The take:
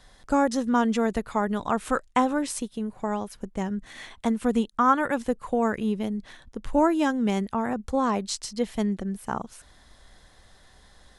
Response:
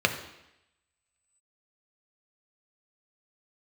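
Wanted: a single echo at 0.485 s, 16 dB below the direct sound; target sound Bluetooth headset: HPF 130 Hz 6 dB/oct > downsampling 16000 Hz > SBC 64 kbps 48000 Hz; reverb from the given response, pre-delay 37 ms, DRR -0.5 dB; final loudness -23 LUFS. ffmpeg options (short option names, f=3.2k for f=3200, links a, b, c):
-filter_complex "[0:a]aecho=1:1:485:0.158,asplit=2[a][b];[1:a]atrim=start_sample=2205,adelay=37[c];[b][c]afir=irnorm=-1:irlink=0,volume=-13.5dB[d];[a][d]amix=inputs=2:normalize=0,highpass=f=130:p=1,aresample=16000,aresample=44100,volume=1.5dB" -ar 48000 -c:a sbc -b:a 64k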